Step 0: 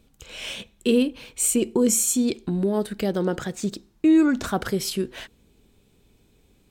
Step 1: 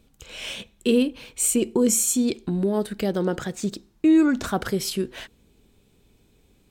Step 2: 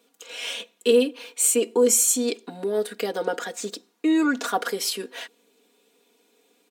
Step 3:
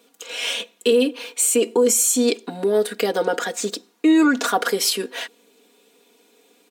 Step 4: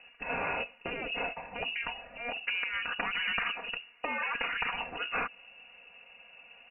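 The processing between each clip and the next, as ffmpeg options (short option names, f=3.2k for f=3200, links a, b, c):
-af anull
-af "highpass=f=330:w=0.5412,highpass=f=330:w=1.3066,aecho=1:1:4.2:0.93"
-af "alimiter=limit=-15.5dB:level=0:latency=1:release=70,volume=6.5dB"
-af "afftfilt=real='re*lt(hypot(re,im),0.158)':imag='im*lt(hypot(re,im),0.158)':win_size=1024:overlap=0.75,acompressor=threshold=-30dB:ratio=4,lowpass=f=2.6k:t=q:w=0.5098,lowpass=f=2.6k:t=q:w=0.6013,lowpass=f=2.6k:t=q:w=0.9,lowpass=f=2.6k:t=q:w=2.563,afreqshift=-3100,volume=4.5dB"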